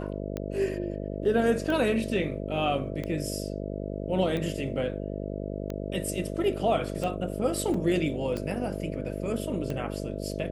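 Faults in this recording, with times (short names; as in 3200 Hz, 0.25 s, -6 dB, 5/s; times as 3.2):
buzz 50 Hz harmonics 13 -34 dBFS
tick 45 rpm -20 dBFS
7.74 gap 3.9 ms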